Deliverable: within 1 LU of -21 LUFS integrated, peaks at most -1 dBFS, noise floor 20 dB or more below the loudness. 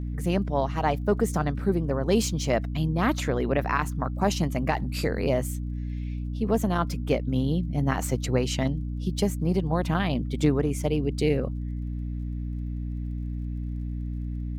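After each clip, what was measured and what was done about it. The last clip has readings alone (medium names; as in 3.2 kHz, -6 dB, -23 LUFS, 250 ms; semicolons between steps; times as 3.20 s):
tick rate 31 per s; hum 60 Hz; highest harmonic 300 Hz; hum level -29 dBFS; loudness -27.5 LUFS; peak level -10.5 dBFS; loudness target -21.0 LUFS
-> de-click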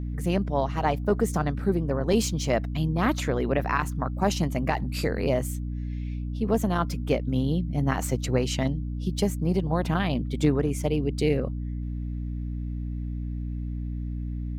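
tick rate 0 per s; hum 60 Hz; highest harmonic 300 Hz; hum level -29 dBFS
-> hum notches 60/120/180/240/300 Hz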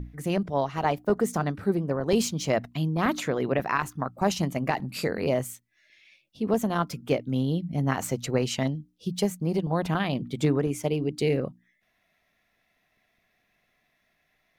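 hum not found; loudness -27.5 LUFS; peak level -11.0 dBFS; loudness target -21.0 LUFS
-> trim +6.5 dB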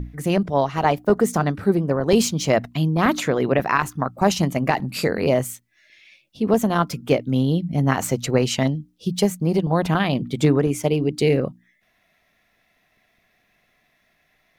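loudness -21.0 LUFS; peak level -4.5 dBFS; noise floor -66 dBFS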